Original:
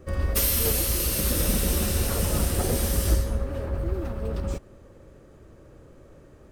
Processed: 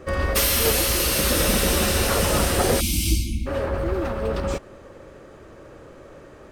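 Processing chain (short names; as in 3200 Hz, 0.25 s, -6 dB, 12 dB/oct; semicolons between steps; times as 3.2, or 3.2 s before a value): spectral delete 2.8–3.46, 360–2100 Hz; overdrive pedal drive 12 dB, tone 3500 Hz, clips at -10 dBFS; gain +5.5 dB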